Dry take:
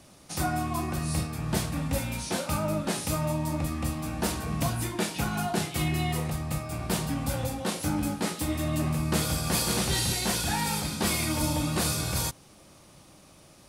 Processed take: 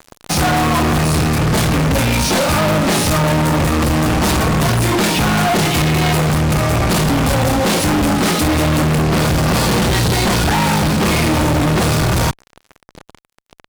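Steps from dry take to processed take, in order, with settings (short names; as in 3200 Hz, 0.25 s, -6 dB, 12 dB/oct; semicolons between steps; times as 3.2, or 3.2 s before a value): LPF 3700 Hz 6 dB/oct, from 9.02 s 1300 Hz; fuzz box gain 46 dB, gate -48 dBFS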